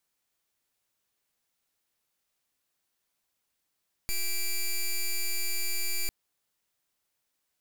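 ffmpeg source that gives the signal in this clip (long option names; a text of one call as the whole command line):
ffmpeg -f lavfi -i "aevalsrc='0.0398*(2*lt(mod(2340*t,1),0.07)-1)':duration=2:sample_rate=44100" out.wav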